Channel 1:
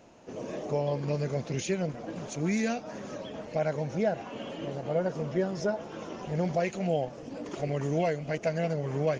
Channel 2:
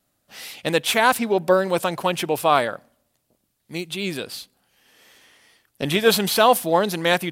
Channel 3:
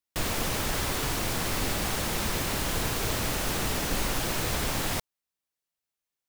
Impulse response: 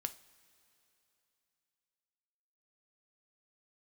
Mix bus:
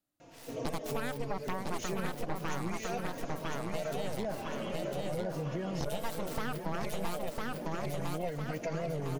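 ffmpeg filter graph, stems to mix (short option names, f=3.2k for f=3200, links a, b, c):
-filter_complex "[0:a]alimiter=level_in=1.5dB:limit=-24dB:level=0:latency=1:release=24,volume=-1.5dB,asplit=2[a][b];[b]adelay=3.8,afreqshift=-0.36[c];[a][c]amix=inputs=2:normalize=1,adelay=200,volume=3dB,asplit=2[d][e];[e]volume=-6.5dB[f];[1:a]equalizer=f=300:w=7.9:g=12,acrossover=split=970|6000[g][h][i];[g]acompressor=threshold=-24dB:ratio=4[j];[h]acompressor=threshold=-43dB:ratio=4[k];[i]acompressor=threshold=-35dB:ratio=4[l];[j][k][l]amix=inputs=3:normalize=0,aeval=exprs='0.266*(cos(1*acos(clip(val(0)/0.266,-1,1)))-cos(1*PI/2))+0.0596*(cos(3*acos(clip(val(0)/0.266,-1,1)))-cos(3*PI/2))+0.133*(cos(6*acos(clip(val(0)/0.266,-1,1)))-cos(6*PI/2))+0.0266*(cos(7*acos(clip(val(0)/0.266,-1,1)))-cos(7*PI/2))':c=same,volume=-9dB,asplit=2[m][n];[n]volume=-3.5dB[o];[f][o]amix=inputs=2:normalize=0,aecho=0:1:1003|2006|3009|4012|5015:1|0.38|0.144|0.0549|0.0209[p];[d][m][p]amix=inputs=3:normalize=0,acompressor=threshold=-32dB:ratio=3"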